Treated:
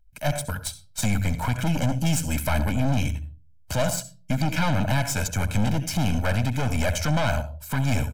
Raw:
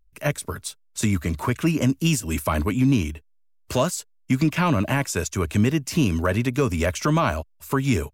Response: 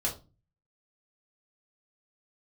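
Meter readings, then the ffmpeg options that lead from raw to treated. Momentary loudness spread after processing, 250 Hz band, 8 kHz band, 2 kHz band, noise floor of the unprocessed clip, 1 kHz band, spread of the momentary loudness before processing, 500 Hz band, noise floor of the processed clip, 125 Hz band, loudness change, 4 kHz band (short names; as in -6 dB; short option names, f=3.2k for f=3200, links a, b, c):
7 LU, -5.0 dB, 0.0 dB, -1.0 dB, -60 dBFS, -2.0 dB, 9 LU, -4.0 dB, -52 dBFS, 0.0 dB, -2.5 dB, 0.0 dB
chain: -filter_complex "[0:a]asplit=2[a][b];[1:a]atrim=start_sample=2205,adelay=66[c];[b][c]afir=irnorm=-1:irlink=0,volume=-18.5dB[d];[a][d]amix=inputs=2:normalize=0,aeval=exprs='(tanh(15.8*val(0)+0.65)-tanh(0.65))/15.8':c=same,aecho=1:1:1.3:0.84,volume=2dB"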